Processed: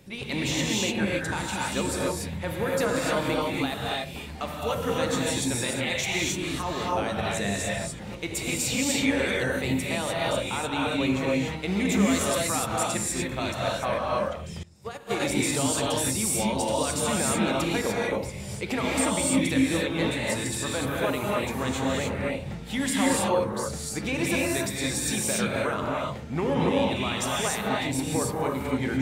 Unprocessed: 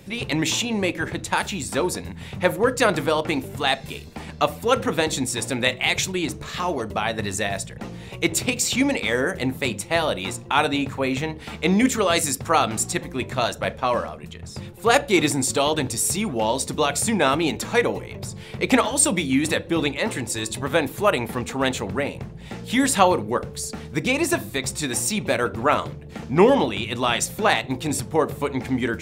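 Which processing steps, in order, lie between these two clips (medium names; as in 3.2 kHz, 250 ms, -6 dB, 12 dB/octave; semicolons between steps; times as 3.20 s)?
peak limiter -12.5 dBFS, peak gain reduction 10 dB; gated-style reverb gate 320 ms rising, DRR -4 dB; 14.63–15.20 s: upward expansion 2.5:1, over -28 dBFS; trim -7.5 dB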